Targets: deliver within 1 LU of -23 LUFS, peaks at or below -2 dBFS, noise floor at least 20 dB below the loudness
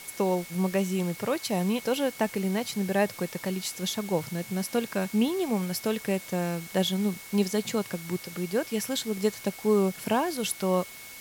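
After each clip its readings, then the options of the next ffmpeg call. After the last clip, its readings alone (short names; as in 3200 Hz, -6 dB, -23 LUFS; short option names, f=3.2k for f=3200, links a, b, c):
steady tone 2200 Hz; tone level -47 dBFS; noise floor -44 dBFS; noise floor target -49 dBFS; loudness -28.5 LUFS; peak -12.5 dBFS; loudness target -23.0 LUFS
-> -af "bandreject=f=2.2k:w=30"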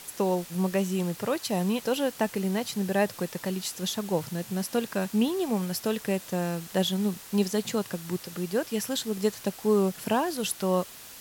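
steady tone none; noise floor -46 dBFS; noise floor target -49 dBFS
-> -af "afftdn=nr=6:nf=-46"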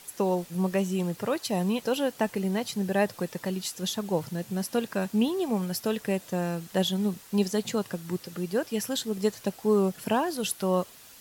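noise floor -51 dBFS; loudness -29.0 LUFS; peak -13.0 dBFS; loudness target -23.0 LUFS
-> -af "volume=6dB"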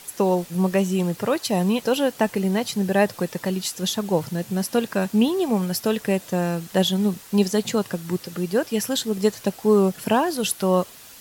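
loudness -23.0 LUFS; peak -7.0 dBFS; noise floor -45 dBFS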